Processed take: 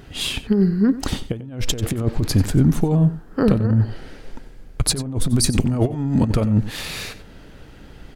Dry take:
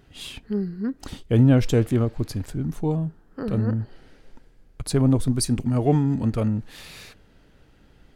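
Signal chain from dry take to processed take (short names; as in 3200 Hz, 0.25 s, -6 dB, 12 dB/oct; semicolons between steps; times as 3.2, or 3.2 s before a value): negative-ratio compressor -25 dBFS, ratio -0.5; echo 92 ms -15.5 dB; gain +8 dB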